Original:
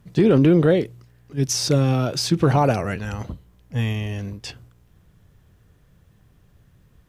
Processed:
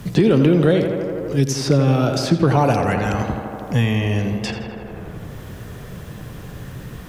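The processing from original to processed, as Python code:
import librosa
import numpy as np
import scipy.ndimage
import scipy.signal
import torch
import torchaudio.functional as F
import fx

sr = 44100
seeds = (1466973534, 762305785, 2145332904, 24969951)

y = fx.echo_tape(x, sr, ms=84, feedback_pct=79, wet_db=-7.0, lp_hz=2800.0, drive_db=7.0, wow_cents=33)
y = fx.band_squash(y, sr, depth_pct=70)
y = y * 10.0 ** (3.0 / 20.0)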